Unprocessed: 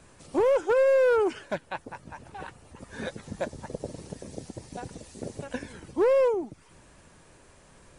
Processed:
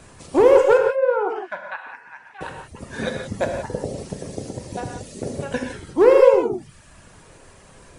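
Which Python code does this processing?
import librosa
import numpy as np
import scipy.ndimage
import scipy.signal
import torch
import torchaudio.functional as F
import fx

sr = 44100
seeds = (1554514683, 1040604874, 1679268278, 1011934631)

y = fx.auto_wah(x, sr, base_hz=780.0, top_hz=2100.0, q=2.0, full_db=-21.0, direction='down', at=(0.77, 2.41))
y = fx.dereverb_blind(y, sr, rt60_s=0.91)
y = fx.rev_gated(y, sr, seeds[0], gate_ms=200, shape='flat', drr_db=2.0)
y = y * 10.0 ** (8.0 / 20.0)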